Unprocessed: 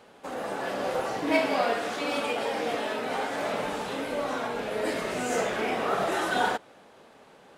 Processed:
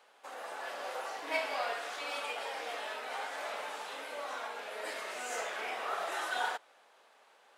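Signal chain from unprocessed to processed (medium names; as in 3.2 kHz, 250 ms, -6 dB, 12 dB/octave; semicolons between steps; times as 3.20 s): high-pass 750 Hz 12 dB/octave; trim -6 dB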